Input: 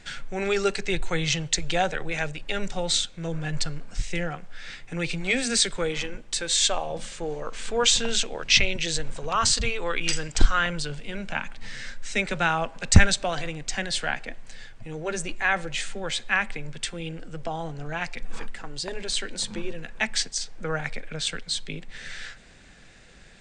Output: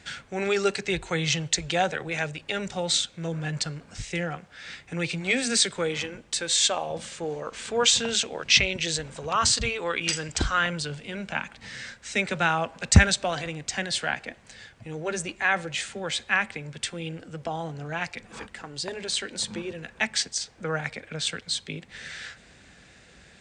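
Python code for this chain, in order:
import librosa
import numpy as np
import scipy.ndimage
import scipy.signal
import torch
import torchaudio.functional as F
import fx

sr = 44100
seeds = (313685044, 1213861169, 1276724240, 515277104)

y = scipy.signal.sosfilt(scipy.signal.butter(4, 51.0, 'highpass', fs=sr, output='sos'), x)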